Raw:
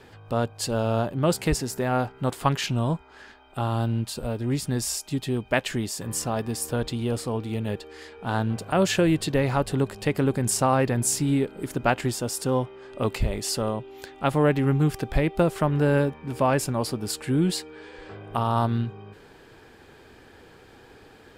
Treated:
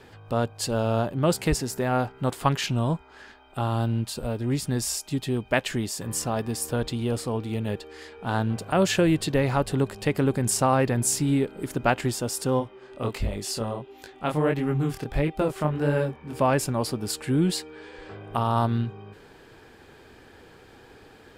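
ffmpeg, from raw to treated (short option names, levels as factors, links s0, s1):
-filter_complex "[0:a]asplit=3[s0][s1][s2];[s0]afade=t=out:st=12.59:d=0.02[s3];[s1]flanger=delay=19:depth=7.6:speed=1.5,afade=t=in:st=12.59:d=0.02,afade=t=out:st=16.33:d=0.02[s4];[s2]afade=t=in:st=16.33:d=0.02[s5];[s3][s4][s5]amix=inputs=3:normalize=0"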